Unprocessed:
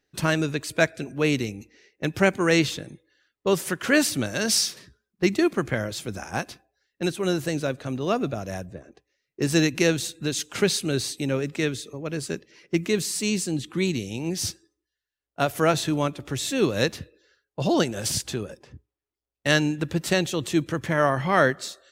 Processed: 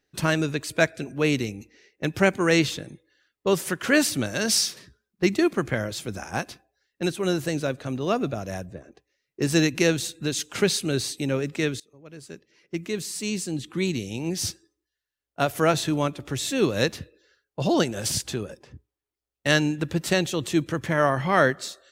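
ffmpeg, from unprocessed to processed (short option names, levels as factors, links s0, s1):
-filter_complex "[0:a]asplit=2[s0][s1];[s0]atrim=end=11.8,asetpts=PTS-STARTPTS,afade=t=out:st=11.796:d=0.004:c=hsin:silence=0.0841395[s2];[s1]atrim=start=11.8,asetpts=PTS-STARTPTS,afade=t=in:d=2.36:silence=0.0841395[s3];[s2][s3]concat=n=2:v=0:a=1"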